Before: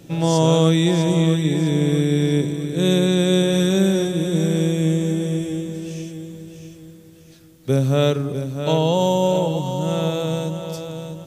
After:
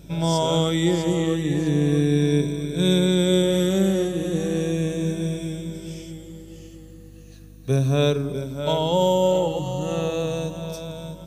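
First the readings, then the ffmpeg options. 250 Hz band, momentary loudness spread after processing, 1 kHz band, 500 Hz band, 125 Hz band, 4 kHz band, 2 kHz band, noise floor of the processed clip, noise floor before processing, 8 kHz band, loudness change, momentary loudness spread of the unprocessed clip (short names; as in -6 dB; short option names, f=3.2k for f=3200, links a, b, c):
-3.0 dB, 14 LU, -2.0 dB, -2.0 dB, -4.0 dB, -2.0 dB, -2.5 dB, -43 dBFS, -46 dBFS, -3.0 dB, -2.5 dB, 13 LU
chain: -af "afftfilt=real='re*pow(10,9/40*sin(2*PI*(1.6*log(max(b,1)*sr/1024/100)/log(2)-(-0.36)*(pts-256)/sr)))':imag='im*pow(10,9/40*sin(2*PI*(1.6*log(max(b,1)*sr/1024/100)/log(2)-(-0.36)*(pts-256)/sr)))':win_size=1024:overlap=0.75,aeval=exprs='val(0)+0.01*(sin(2*PI*50*n/s)+sin(2*PI*2*50*n/s)/2+sin(2*PI*3*50*n/s)/3+sin(2*PI*4*50*n/s)/4+sin(2*PI*5*50*n/s)/5)':c=same,bandreject=f=53.62:t=h:w=4,bandreject=f=107.24:t=h:w=4,bandreject=f=160.86:t=h:w=4,bandreject=f=214.48:t=h:w=4,bandreject=f=268.1:t=h:w=4,bandreject=f=321.72:t=h:w=4,bandreject=f=375.34:t=h:w=4,bandreject=f=428.96:t=h:w=4,volume=-3.5dB"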